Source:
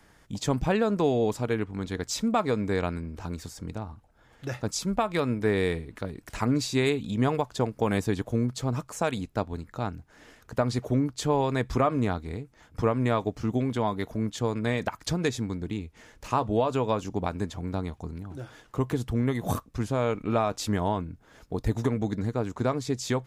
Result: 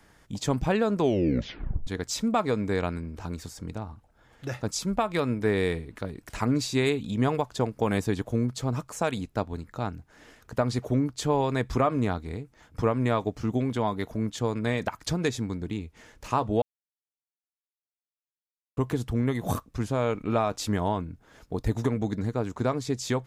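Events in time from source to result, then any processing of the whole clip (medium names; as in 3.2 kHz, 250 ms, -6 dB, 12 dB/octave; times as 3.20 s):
1.00 s: tape stop 0.87 s
16.62–18.77 s: mute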